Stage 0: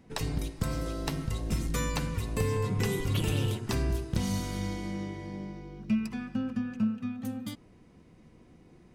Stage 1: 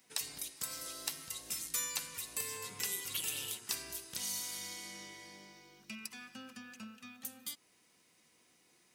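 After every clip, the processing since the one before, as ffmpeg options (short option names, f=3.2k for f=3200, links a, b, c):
-filter_complex "[0:a]aderivative,asplit=2[a][b];[b]acompressor=threshold=-52dB:ratio=6,volume=0.5dB[c];[a][c]amix=inputs=2:normalize=0,volume=2.5dB"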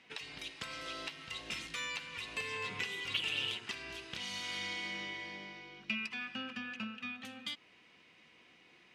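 -af "alimiter=level_in=2.5dB:limit=-24dB:level=0:latency=1:release=355,volume=-2.5dB,lowpass=f=2.8k:t=q:w=2.1,volume=6dB"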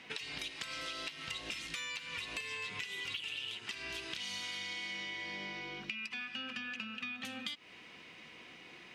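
-filter_complex "[0:a]acrossover=split=1800[a][b];[a]alimiter=level_in=19.5dB:limit=-24dB:level=0:latency=1:release=389,volume=-19.5dB[c];[c][b]amix=inputs=2:normalize=0,acompressor=threshold=-47dB:ratio=10,volume=9dB"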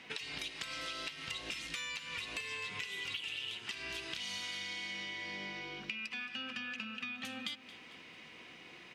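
-af "aecho=1:1:223|446|669|892|1115:0.158|0.0872|0.0479|0.0264|0.0145"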